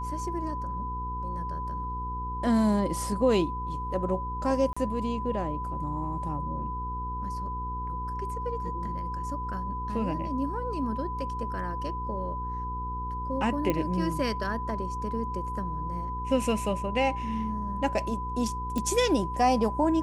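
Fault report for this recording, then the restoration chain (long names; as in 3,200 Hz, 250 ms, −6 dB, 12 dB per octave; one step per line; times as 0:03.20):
mains hum 60 Hz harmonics 8 −36 dBFS
whistle 1,000 Hz −33 dBFS
0:04.73–0:04.76: drop-out 35 ms
0:13.70: click −14 dBFS
0:18.78: click −17 dBFS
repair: click removal
hum removal 60 Hz, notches 8
notch filter 1,000 Hz, Q 30
repair the gap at 0:04.73, 35 ms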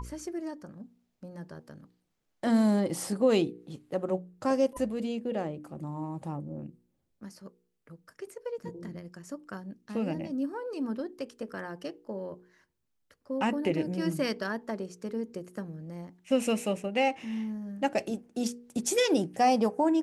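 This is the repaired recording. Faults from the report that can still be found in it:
none of them is left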